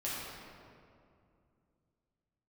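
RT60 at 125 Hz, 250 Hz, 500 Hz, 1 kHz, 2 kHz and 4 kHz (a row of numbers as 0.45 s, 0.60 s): 3.4 s, 3.1 s, 2.6 s, 2.3 s, 1.8 s, 1.3 s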